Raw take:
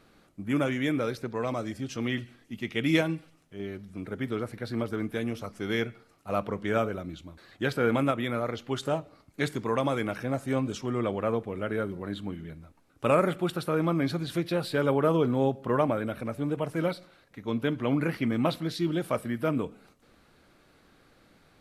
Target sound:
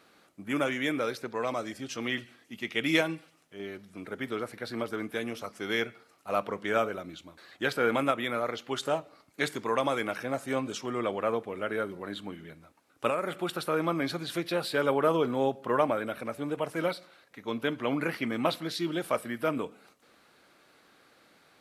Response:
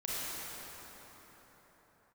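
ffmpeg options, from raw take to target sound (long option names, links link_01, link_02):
-filter_complex "[0:a]highpass=frequency=520:poles=1,asplit=3[link_01][link_02][link_03];[link_01]afade=type=out:start_time=13.08:duration=0.02[link_04];[link_02]acompressor=threshold=-28dB:ratio=10,afade=type=in:start_time=13.08:duration=0.02,afade=type=out:start_time=13.57:duration=0.02[link_05];[link_03]afade=type=in:start_time=13.57:duration=0.02[link_06];[link_04][link_05][link_06]amix=inputs=3:normalize=0,volume=2.5dB"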